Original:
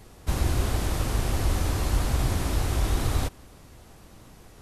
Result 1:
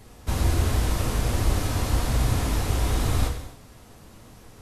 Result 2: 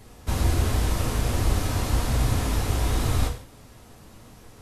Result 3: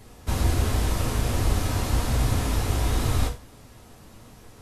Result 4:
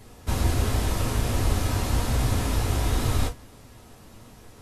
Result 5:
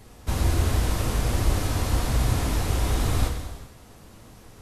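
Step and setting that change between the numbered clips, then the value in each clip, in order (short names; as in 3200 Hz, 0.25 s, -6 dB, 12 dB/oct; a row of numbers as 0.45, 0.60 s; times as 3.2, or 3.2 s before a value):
non-linear reverb, gate: 320, 190, 130, 80, 470 ms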